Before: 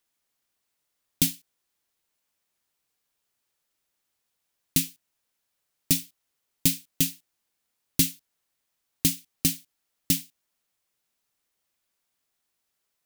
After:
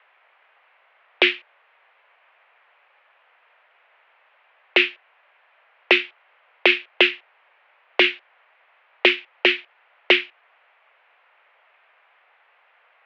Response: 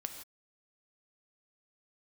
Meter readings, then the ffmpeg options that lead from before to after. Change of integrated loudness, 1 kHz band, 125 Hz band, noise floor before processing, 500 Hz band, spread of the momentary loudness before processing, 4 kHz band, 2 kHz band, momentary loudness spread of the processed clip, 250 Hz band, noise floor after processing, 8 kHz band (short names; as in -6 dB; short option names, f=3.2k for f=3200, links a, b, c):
+6.5 dB, n/a, under -30 dB, -80 dBFS, +23.0 dB, 3 LU, +11.0 dB, +23.5 dB, 10 LU, +2.0 dB, -61 dBFS, under -25 dB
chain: -af "highpass=f=470:t=q:w=0.5412,highpass=f=470:t=q:w=1.307,lowpass=f=2.5k:t=q:w=0.5176,lowpass=f=2.5k:t=q:w=0.7071,lowpass=f=2.5k:t=q:w=1.932,afreqshift=88,alimiter=level_in=31dB:limit=-1dB:release=50:level=0:latency=1,volume=-1dB"